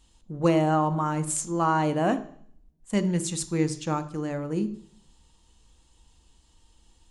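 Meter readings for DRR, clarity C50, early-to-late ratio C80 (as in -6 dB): 9.5 dB, 14.5 dB, 18.0 dB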